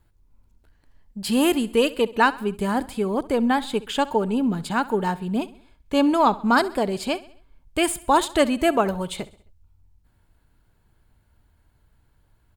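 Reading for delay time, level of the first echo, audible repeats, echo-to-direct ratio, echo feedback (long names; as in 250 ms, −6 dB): 66 ms, −19.0 dB, 3, −18.0 dB, 49%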